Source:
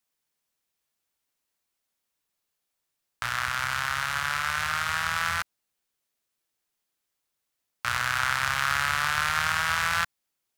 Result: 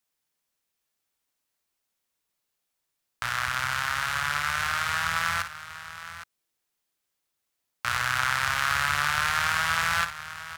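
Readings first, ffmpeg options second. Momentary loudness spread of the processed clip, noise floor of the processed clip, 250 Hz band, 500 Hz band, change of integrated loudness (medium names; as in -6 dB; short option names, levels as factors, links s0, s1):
15 LU, -81 dBFS, +0.5 dB, +0.5 dB, +0.5 dB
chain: -af "aecho=1:1:55|815:0.299|0.224"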